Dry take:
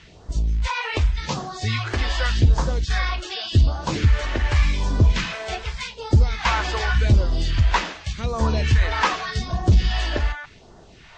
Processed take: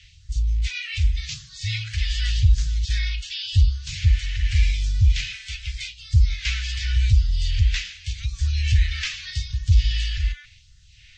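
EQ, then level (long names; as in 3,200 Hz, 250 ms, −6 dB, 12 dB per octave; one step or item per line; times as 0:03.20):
inverse Chebyshev band-stop filter 270–870 Hz, stop band 60 dB
0.0 dB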